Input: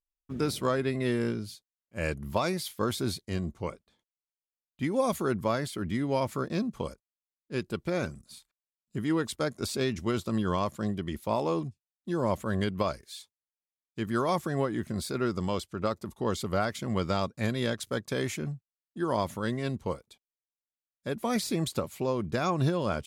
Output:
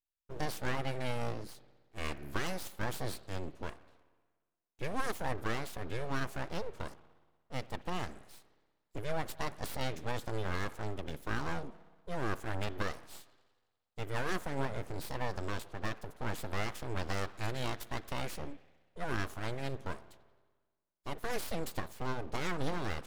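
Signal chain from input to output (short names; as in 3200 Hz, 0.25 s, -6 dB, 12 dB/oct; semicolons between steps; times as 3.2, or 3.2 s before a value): vibrato 2.8 Hz 16 cents; spring tank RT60 1.4 s, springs 59 ms, chirp 40 ms, DRR 16 dB; full-wave rectifier; gain -4.5 dB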